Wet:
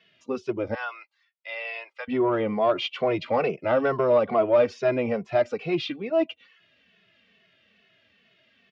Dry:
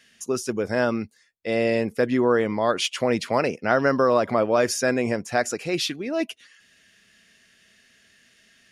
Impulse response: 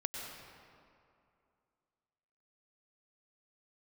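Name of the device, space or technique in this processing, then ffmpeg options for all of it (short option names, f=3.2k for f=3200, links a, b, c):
barber-pole flanger into a guitar amplifier: -filter_complex "[0:a]asettb=1/sr,asplit=3[a][b][c];[a]atrim=end=0.744[d];[b]atrim=start=0.74:end=2.08,asetpts=PTS-STARTPTS,afade=t=in:d=0.004:c=qsin,afade=t=out:st=1.336:d=0.004:c=qsin,highpass=f=940:w=0.5412,highpass=f=940:w=1.3066[e];[c]atrim=start=2.076[f];[d][e]acrossfade=d=0.004:c1=hsin:c2=qsin[g];[g][f]acrossfade=d=0.004:c1=qsin:c2=hsin,asplit=2[h][i];[i]adelay=2.3,afreqshift=-2.3[j];[h][j]amix=inputs=2:normalize=1,asoftclip=type=tanh:threshold=-15.5dB,highpass=97,equalizer=f=240:t=q:w=4:g=-4,equalizer=f=630:t=q:w=4:g=4,equalizer=f=1.7k:t=q:w=4:g=-9,lowpass=f=3.4k:w=0.5412,lowpass=f=3.4k:w=1.3066,volume=2.5dB"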